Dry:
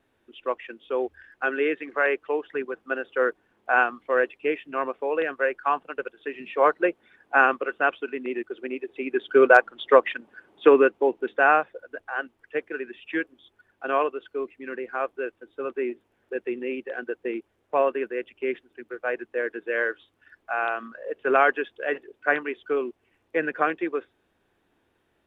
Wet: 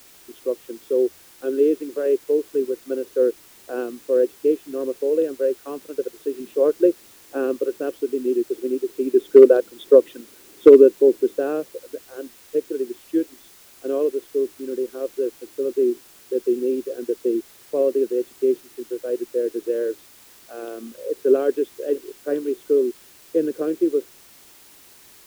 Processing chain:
drawn EQ curve 110 Hz 0 dB, 200 Hz +5 dB, 370 Hz +11 dB, 540 Hz +5 dB, 780 Hz −17 dB, 1,400 Hz −17 dB, 2,200 Hz −24 dB, 3,700 Hz −1 dB, 7,600 Hz −13 dB
bit-depth reduction 8 bits, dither triangular
level −1 dB

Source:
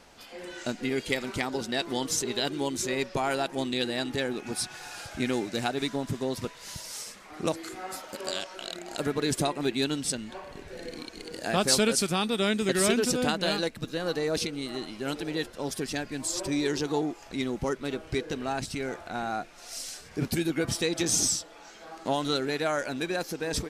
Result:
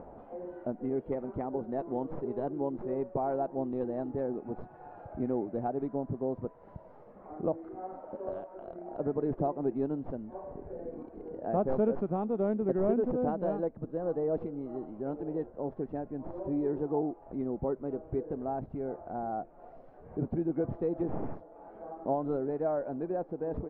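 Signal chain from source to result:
stylus tracing distortion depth 0.084 ms
upward compression, threshold −33 dBFS
transistor ladder low-pass 900 Hz, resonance 30%
level +3 dB

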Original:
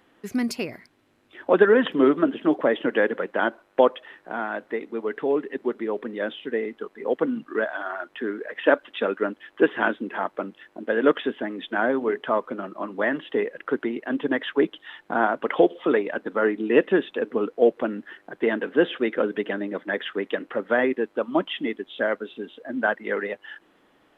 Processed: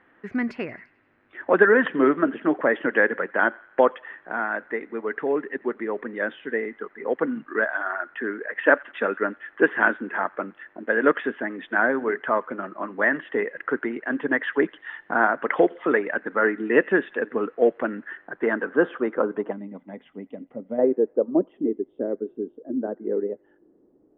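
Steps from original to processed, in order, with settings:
delay with a high-pass on its return 88 ms, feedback 54%, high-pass 1,400 Hz, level −22 dB
low-pass filter sweep 1,800 Hz → 380 Hz, 0:18.05–0:21.80
gain on a spectral selection 0:19.52–0:20.79, 280–1,900 Hz −15 dB
level −1.5 dB

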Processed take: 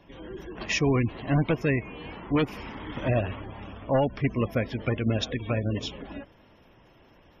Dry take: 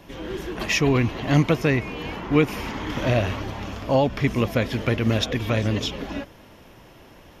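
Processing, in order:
wave folding −13 dBFS
gate on every frequency bin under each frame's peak −25 dB strong
expander for the loud parts 1.5 to 1, over −29 dBFS
level −2.5 dB

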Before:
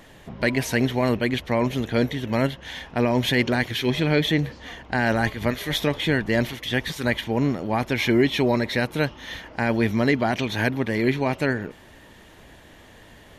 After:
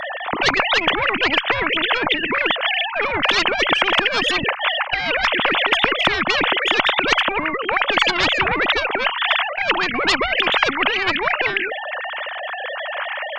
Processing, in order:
three sine waves on the formant tracks
harmonic generator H 5 −24 dB, 8 −42 dB, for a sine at −5 dBFS
every bin compressed towards the loudest bin 10 to 1
level +4 dB

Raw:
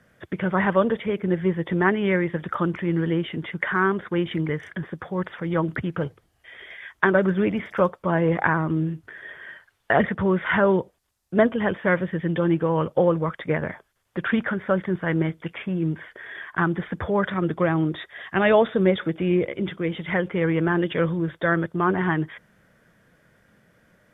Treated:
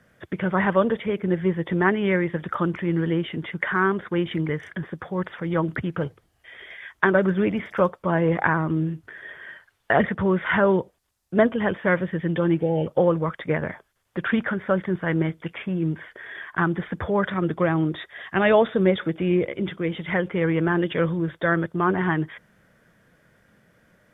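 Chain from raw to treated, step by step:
healed spectral selection 0:12.61–0:12.85, 890–2,300 Hz before

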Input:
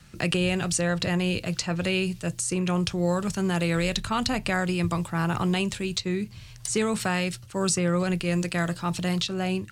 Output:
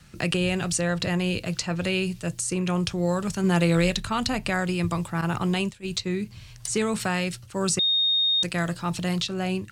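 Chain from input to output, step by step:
0:03.43–0:03.91: comb filter 5.8 ms, depth 72%
0:05.21–0:05.88: noise gate −27 dBFS, range −16 dB
0:07.79–0:08.43: beep over 3,700 Hz −19 dBFS

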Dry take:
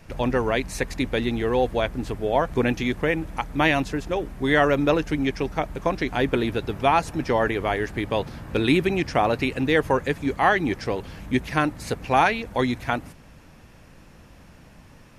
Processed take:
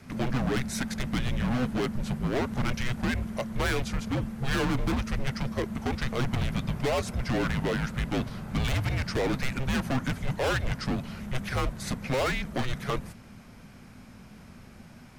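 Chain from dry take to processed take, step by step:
gain into a clipping stage and back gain 24.5 dB
frequency shifter −260 Hz

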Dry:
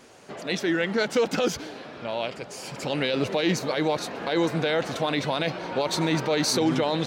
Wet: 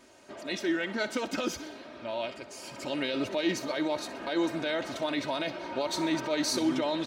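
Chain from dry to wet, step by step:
comb filter 3.2 ms, depth 62%
on a send: feedback echo with a high-pass in the loop 62 ms, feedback 47%, level −15 dB
on the sum: level −7 dB

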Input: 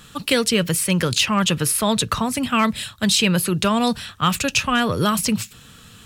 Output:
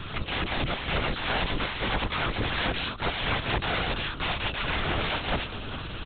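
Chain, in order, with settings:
compressor on every frequency bin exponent 0.6
on a send: single-tap delay 659 ms −18.5 dB
on the sum: wrap-around overflow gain 15 dB
linear-prediction vocoder at 8 kHz whisper
level −5 dB

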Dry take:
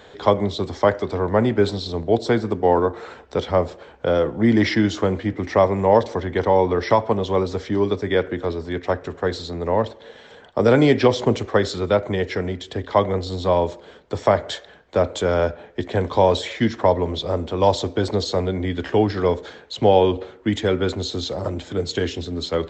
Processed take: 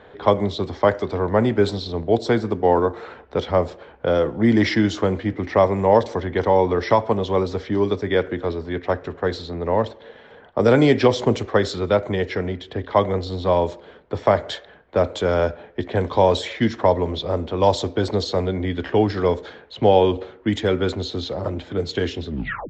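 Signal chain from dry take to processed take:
turntable brake at the end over 0.43 s
low-pass that shuts in the quiet parts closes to 2,100 Hz, open at −13 dBFS

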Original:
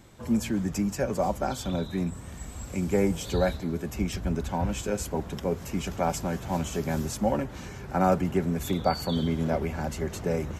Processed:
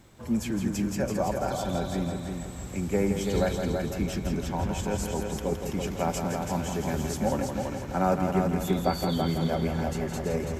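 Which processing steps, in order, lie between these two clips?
echo machine with several playback heads 166 ms, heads first and second, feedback 48%, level −7 dB
bit-depth reduction 12 bits, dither none
level −2 dB

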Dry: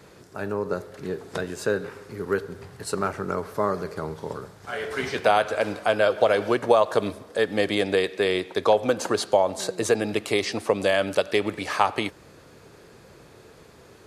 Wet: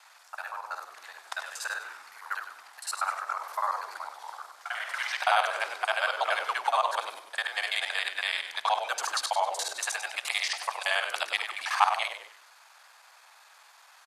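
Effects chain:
reversed piece by piece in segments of 47 ms
Butterworth high-pass 760 Hz 48 dB per octave
on a send: echo with shifted repeats 98 ms, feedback 37%, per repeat −83 Hz, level −9 dB

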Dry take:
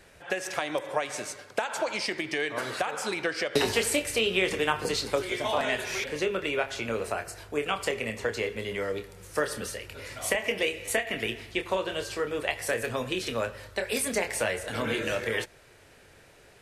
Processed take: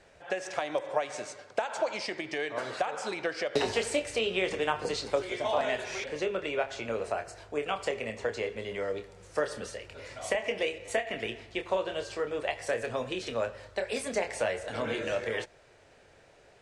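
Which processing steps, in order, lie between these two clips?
low-pass filter 8,300 Hz 24 dB per octave
parametric band 650 Hz +6.5 dB 1.1 octaves
0:10.78–0:11.51: one half of a high-frequency compander decoder only
level −5.5 dB

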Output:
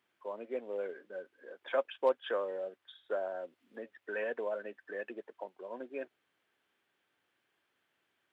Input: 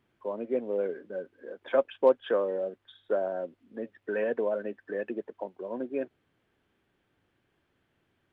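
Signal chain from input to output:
high-pass filter 1,100 Hz 6 dB per octave
0:03.34–0:03.98: multiband upward and downward compressor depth 40%

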